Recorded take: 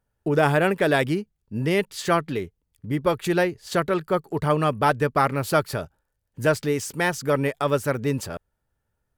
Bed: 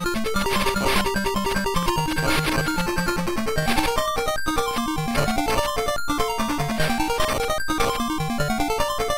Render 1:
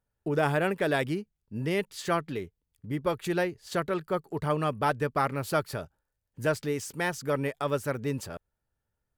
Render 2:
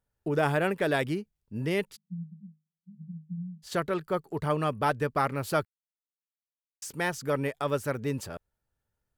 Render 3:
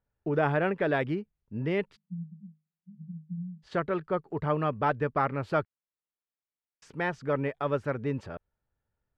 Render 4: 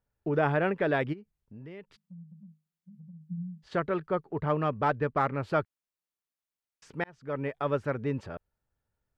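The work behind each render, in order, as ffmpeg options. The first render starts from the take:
-af "volume=0.473"
-filter_complex "[0:a]asplit=3[s0][s1][s2];[s0]afade=t=out:st=1.95:d=0.02[s3];[s1]asuperpass=centerf=180:order=20:qfactor=3.3,afade=t=in:st=1.95:d=0.02,afade=t=out:st=3.62:d=0.02[s4];[s2]afade=t=in:st=3.62:d=0.02[s5];[s3][s4][s5]amix=inputs=3:normalize=0,asplit=3[s6][s7][s8];[s6]atrim=end=5.65,asetpts=PTS-STARTPTS,afade=t=out:st=5.646:d=0.004:c=hsin[s9];[s7]atrim=start=5.65:end=6.82,asetpts=PTS-STARTPTS,volume=0[s10];[s8]atrim=start=6.82,asetpts=PTS-STARTPTS,afade=t=in:d=0.004:c=hsin[s11];[s9][s10][s11]concat=n=3:v=0:a=1"
-af "lowpass=2400"
-filter_complex "[0:a]asplit=3[s0][s1][s2];[s0]afade=t=out:st=1.12:d=0.02[s3];[s1]acompressor=threshold=0.00447:ratio=3:attack=3.2:release=140:knee=1:detection=peak,afade=t=in:st=1.12:d=0.02,afade=t=out:st=3.2:d=0.02[s4];[s2]afade=t=in:st=3.2:d=0.02[s5];[s3][s4][s5]amix=inputs=3:normalize=0,asettb=1/sr,asplit=3[s6][s7][s8];[s6]atrim=end=4.274[s9];[s7]atrim=start=4.27:end=5.37,asetpts=PTS-STARTPTS,afade=t=in:d=0.004:c=qsin,afade=t=out:st=1.096:d=0.004:c=qsin,adynamicsmooth=sensitivity=4:basefreq=4900[s10];[s8]atrim=start=5.366[s11];[s9][s10]acrossfade=d=0.004:c1=hsin:c2=qsin[s12];[s12][s11]acrossfade=d=0.004:c1=qsin:c2=hsin,asplit=2[s13][s14];[s13]atrim=end=7.04,asetpts=PTS-STARTPTS,afade=t=out:st=7.036:d=0.004:c=hsin[s15];[s14]atrim=start=7.04,asetpts=PTS-STARTPTS,afade=t=in:d=0.54[s16];[s15][s16]concat=n=2:v=0:a=1"

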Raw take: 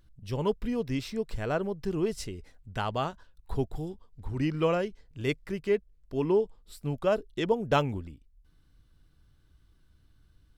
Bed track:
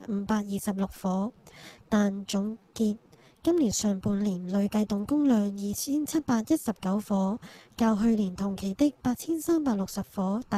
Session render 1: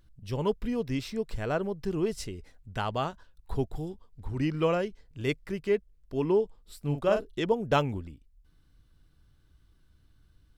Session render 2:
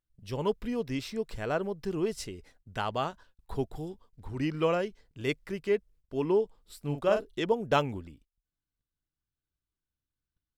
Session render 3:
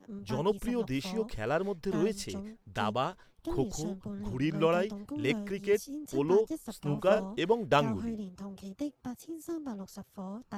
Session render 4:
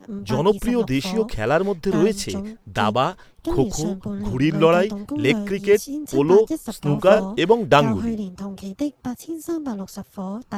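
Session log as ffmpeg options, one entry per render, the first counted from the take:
-filter_complex "[0:a]asettb=1/sr,asplit=3[s0][s1][s2];[s0]atrim=end=6.844[s3];[s1]atrim=start=6.84:end=7.39,asetpts=PTS-STARTPTS,afade=t=in:d=0.004:c=qsin,afade=t=out:st=0.546:d=0.004:c=qsin,asplit=2[s4][s5];[s5]adelay=41,volume=0.501[s6];[s4][s6]amix=inputs=2:normalize=0,atrim=end_sample=24255[s7];[s2]atrim=start=7.386[s8];[s3][s7]acrossfade=d=0.004:c1=hsin:c2=qsin[s9];[s9][s8]acrossfade=d=0.004:c1=qsin:c2=hsin"
-af "agate=range=0.0631:threshold=0.00224:ratio=16:detection=peak,lowshelf=f=160:g=-7"
-filter_complex "[1:a]volume=0.237[s0];[0:a][s0]amix=inputs=2:normalize=0"
-af "volume=3.76,alimiter=limit=0.891:level=0:latency=1"

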